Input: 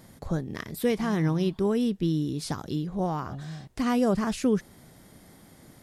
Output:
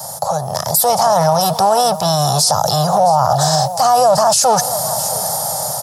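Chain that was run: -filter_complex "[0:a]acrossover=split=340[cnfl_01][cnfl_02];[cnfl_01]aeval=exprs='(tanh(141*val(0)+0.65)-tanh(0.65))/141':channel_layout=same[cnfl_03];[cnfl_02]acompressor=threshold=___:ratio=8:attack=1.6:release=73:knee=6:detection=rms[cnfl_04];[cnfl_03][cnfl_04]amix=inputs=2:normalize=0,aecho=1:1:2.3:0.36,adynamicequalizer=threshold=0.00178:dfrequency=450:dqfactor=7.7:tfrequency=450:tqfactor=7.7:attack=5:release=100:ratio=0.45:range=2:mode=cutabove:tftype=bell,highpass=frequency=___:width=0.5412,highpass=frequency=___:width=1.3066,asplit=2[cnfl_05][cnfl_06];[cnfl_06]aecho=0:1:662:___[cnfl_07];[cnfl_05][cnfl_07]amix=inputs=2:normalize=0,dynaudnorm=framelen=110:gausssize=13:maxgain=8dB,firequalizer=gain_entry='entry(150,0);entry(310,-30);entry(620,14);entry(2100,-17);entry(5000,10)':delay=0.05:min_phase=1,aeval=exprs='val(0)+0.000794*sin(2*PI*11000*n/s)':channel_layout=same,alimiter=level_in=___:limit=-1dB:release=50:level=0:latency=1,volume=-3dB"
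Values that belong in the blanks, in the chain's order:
-39dB, 120, 120, 0.133, 24dB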